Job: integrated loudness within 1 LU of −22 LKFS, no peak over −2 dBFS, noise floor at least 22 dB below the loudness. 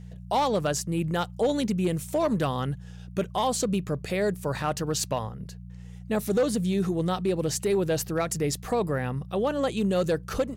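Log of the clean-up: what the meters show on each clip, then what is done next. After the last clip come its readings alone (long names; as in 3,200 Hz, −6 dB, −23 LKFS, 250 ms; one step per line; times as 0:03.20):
share of clipped samples 0.7%; peaks flattened at −18.0 dBFS; mains hum 60 Hz; hum harmonics up to 180 Hz; level of the hum −39 dBFS; integrated loudness −27.5 LKFS; sample peak −18.0 dBFS; target loudness −22.0 LKFS
→ clipped peaks rebuilt −18 dBFS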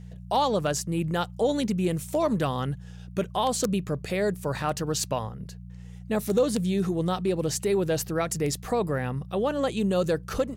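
share of clipped samples 0.0%; mains hum 60 Hz; hum harmonics up to 180 Hz; level of the hum −38 dBFS
→ hum removal 60 Hz, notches 3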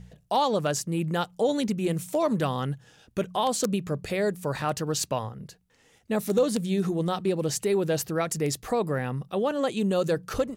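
mains hum none found; integrated loudness −27.5 LKFS; sample peak −9.0 dBFS; target loudness −22.0 LKFS
→ level +5.5 dB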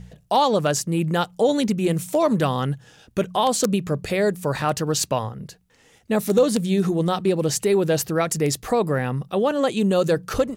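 integrated loudness −22.0 LKFS; sample peak −3.5 dBFS; background noise floor −57 dBFS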